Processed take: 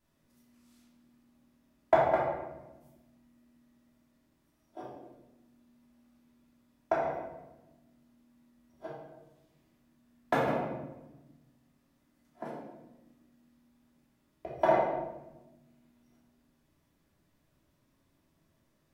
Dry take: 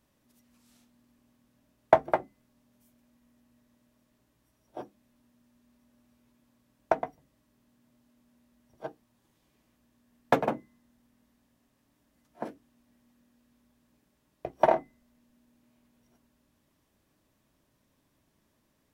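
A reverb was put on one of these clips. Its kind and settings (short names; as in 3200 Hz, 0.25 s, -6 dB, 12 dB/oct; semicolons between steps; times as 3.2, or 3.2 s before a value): shoebox room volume 510 m³, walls mixed, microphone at 3 m; gain -9 dB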